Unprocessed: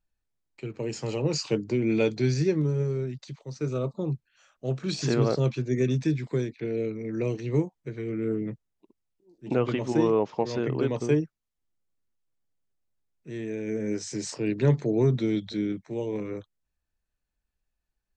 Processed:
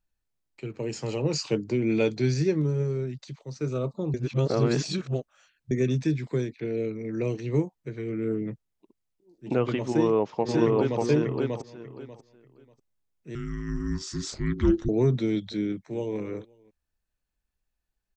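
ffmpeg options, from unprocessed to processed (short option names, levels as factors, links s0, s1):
-filter_complex "[0:a]asplit=2[s0][s1];[s1]afade=t=in:st=9.89:d=0.01,afade=t=out:st=11.02:d=0.01,aecho=0:1:590|1180|1770:0.841395|0.168279|0.0336558[s2];[s0][s2]amix=inputs=2:normalize=0,asettb=1/sr,asplit=3[s3][s4][s5];[s3]atrim=end=13.354[s6];[s4]atrim=start=13.35:end=14.89,asetpts=PTS-STARTPTS,afade=t=in:d=0.004:c=qsin,afade=t=out:st=1.536:d=0.004:c=qsin,afreqshift=-480[s7];[s5]atrim=start=14.886[s8];[s6][s7]acrossfade=d=0.004:c1=hsin:c2=qsin[s9];[s9][s8]acrossfade=d=0.004:c1=qsin:c2=hsin,asplit=2[s10][s11];[s11]afade=t=in:st=15.67:d=0.01,afade=t=out:st=16.18:d=0.01,aecho=0:1:260|520:0.158489|0.0396223[s12];[s10][s12]amix=inputs=2:normalize=0,asplit=3[s13][s14][s15];[s13]atrim=end=4.142[s16];[s14]atrim=start=4.138:end=5.712,asetpts=PTS-STARTPTS,areverse[s17];[s15]atrim=start=5.708[s18];[s16][s17]acrossfade=d=0.004:c1=hsin:c2=hsin[s19];[s19][s18]acrossfade=d=0.004:c1=hsin:c2=hsin"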